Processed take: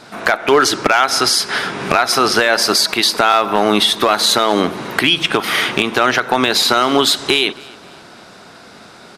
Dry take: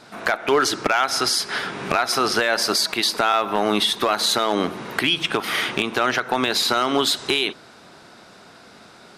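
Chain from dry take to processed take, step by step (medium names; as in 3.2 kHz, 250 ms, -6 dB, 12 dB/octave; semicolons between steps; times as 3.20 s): feedback delay 270 ms, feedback 40%, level -24 dB; trim +6.5 dB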